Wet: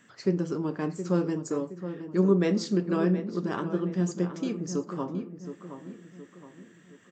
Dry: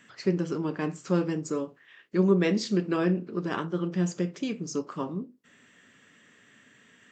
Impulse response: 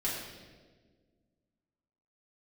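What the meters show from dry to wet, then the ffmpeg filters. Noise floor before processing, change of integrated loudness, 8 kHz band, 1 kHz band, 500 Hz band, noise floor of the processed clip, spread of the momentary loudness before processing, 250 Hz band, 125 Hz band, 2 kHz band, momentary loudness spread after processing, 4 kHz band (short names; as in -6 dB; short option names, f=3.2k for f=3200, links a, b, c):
-60 dBFS, 0.0 dB, n/a, -1.0 dB, +0.5 dB, -56 dBFS, 10 LU, +0.5 dB, +0.5 dB, -3.5 dB, 18 LU, -3.0 dB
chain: -filter_complex "[0:a]equalizer=f=2.6k:w=1:g=-6.5,asplit=2[a][b];[b]adelay=719,lowpass=f=2.2k:p=1,volume=-10dB,asplit=2[c][d];[d]adelay=719,lowpass=f=2.2k:p=1,volume=0.45,asplit=2[e][f];[f]adelay=719,lowpass=f=2.2k:p=1,volume=0.45,asplit=2[g][h];[h]adelay=719,lowpass=f=2.2k:p=1,volume=0.45,asplit=2[i][j];[j]adelay=719,lowpass=f=2.2k:p=1,volume=0.45[k];[c][e][g][i][k]amix=inputs=5:normalize=0[l];[a][l]amix=inputs=2:normalize=0"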